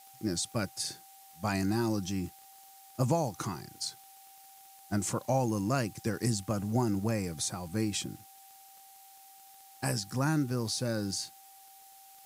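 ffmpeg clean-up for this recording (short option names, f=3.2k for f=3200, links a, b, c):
-af "adeclick=t=4,bandreject=f=780:w=30,afftdn=nr=23:nf=-55"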